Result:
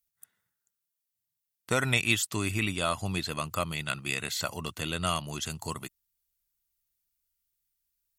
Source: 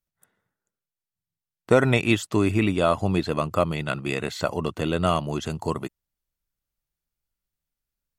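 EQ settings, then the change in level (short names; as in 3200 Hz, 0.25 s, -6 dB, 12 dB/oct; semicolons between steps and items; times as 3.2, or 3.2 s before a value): passive tone stack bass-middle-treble 5-5-5; high shelf 8500 Hz +9.5 dB; +7.5 dB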